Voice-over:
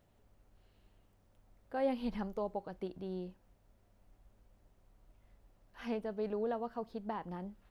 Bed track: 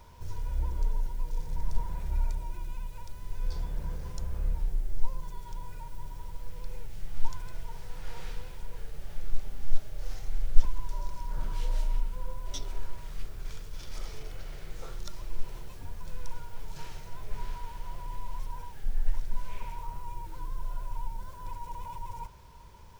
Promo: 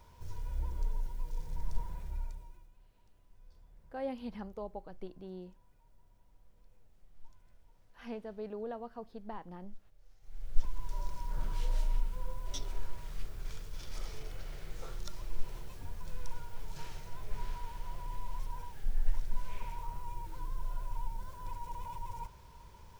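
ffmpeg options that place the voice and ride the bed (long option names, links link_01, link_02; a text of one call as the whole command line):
ffmpeg -i stem1.wav -i stem2.wav -filter_complex "[0:a]adelay=2200,volume=-4.5dB[link_01];[1:a]volume=18.5dB,afade=type=out:start_time=1.79:duration=0.92:silence=0.0891251,afade=type=in:start_time=10.2:duration=0.81:silence=0.0630957[link_02];[link_01][link_02]amix=inputs=2:normalize=0" out.wav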